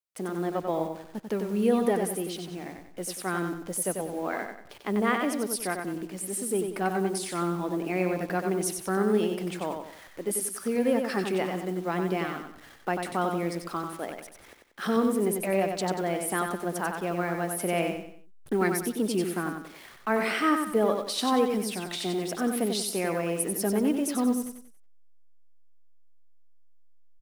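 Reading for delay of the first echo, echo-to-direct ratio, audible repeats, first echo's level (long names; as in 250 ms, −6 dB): 93 ms, −5.0 dB, 4, −5.5 dB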